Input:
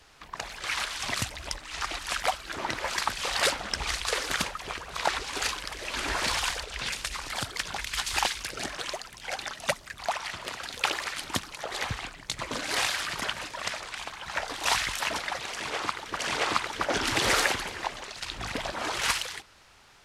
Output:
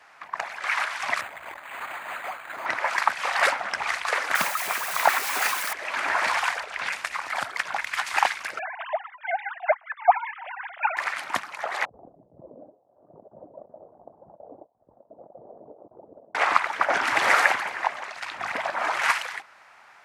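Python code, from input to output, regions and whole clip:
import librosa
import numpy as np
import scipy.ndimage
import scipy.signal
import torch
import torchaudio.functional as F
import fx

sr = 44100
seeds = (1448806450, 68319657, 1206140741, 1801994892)

y = fx.chain(x, sr, fx.tube_stage(drive_db=36.0, bias=0.5),
    fx.resample_bad(factor=8, down='none', up='hold'), at=(1.21, 2.66))
y = fx.chain(y, sr, fx.crossing_spikes(level_db=-19.0),
    fx.highpass(hz=130.0, slope=24),
    fx.low_shelf(hz=220.0, db=9.5), at=(4.35, 5.73))
y = fx.chain(y, sr, fx.sine_speech(),
    fx.hum_notches(base_hz=50, count=4), at=(8.59, 10.97))
y = fx.chain(y, sr, fx.over_compress(threshold_db=-36.0, ratio=-0.5),
    fx.steep_lowpass(hz=550.0, slope=36), at=(11.85, 16.35))
y = scipy.signal.sosfilt(scipy.signal.butter(2, 170.0, 'highpass', fs=sr, output='sos'), y)
y = fx.band_shelf(y, sr, hz=1200.0, db=13.0, octaves=2.3)
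y = y * 10.0 ** (-5.5 / 20.0)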